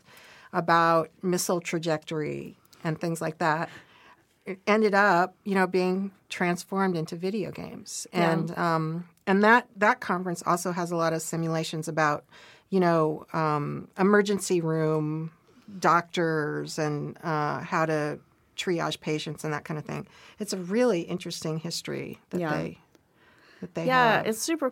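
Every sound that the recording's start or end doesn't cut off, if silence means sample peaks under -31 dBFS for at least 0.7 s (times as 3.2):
4.48–22.7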